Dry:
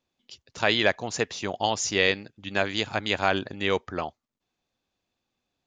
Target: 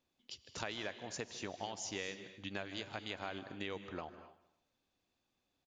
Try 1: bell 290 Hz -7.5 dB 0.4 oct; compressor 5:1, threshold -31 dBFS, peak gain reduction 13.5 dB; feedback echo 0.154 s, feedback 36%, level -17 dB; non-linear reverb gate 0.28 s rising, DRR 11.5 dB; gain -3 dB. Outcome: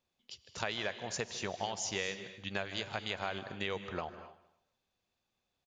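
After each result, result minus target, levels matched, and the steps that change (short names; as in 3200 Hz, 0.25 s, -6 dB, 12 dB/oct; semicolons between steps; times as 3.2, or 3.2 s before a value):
compressor: peak gain reduction -6 dB; 250 Hz band -3.5 dB
change: compressor 5:1, threshold -38 dBFS, peak gain reduction 19 dB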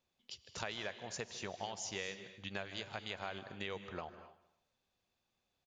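250 Hz band -3.0 dB
change: bell 290 Hz +2.5 dB 0.4 oct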